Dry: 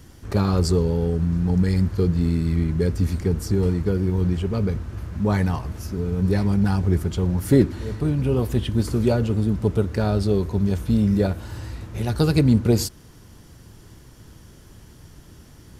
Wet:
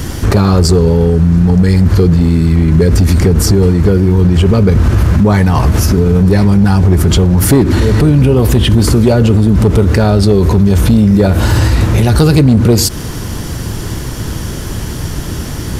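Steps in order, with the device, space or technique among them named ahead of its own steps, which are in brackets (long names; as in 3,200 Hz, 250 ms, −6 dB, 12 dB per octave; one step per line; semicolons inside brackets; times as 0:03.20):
loud club master (downward compressor 2 to 1, threshold −24 dBFS, peak gain reduction 8 dB; hard clipping −17.5 dBFS, distortion −23 dB; boost into a limiter +27.5 dB)
level −1 dB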